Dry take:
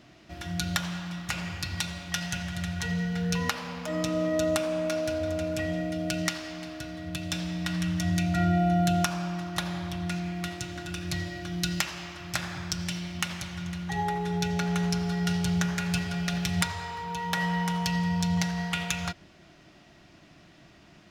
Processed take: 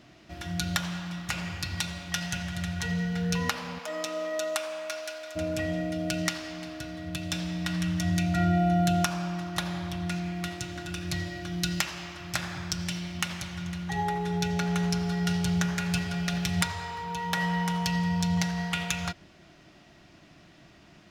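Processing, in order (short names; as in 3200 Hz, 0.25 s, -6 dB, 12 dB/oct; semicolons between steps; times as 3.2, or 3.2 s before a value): 3.78–5.35 HPF 460 Hz -> 1200 Hz 12 dB/oct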